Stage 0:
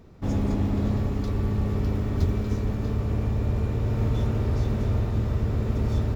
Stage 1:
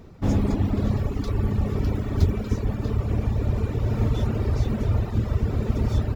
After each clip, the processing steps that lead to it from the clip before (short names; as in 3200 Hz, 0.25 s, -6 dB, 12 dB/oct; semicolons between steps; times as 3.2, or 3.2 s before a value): reverb removal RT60 1.5 s; gain +5 dB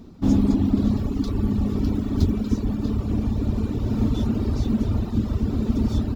graphic EQ 125/250/500/2000/4000 Hz -5/+11/-6/-7/+4 dB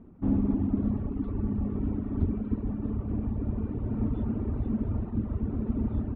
Bessel low-pass 1500 Hz, order 8; gain -7 dB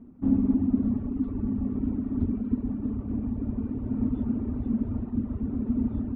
bell 250 Hz +12 dB 0.29 oct; gain -3 dB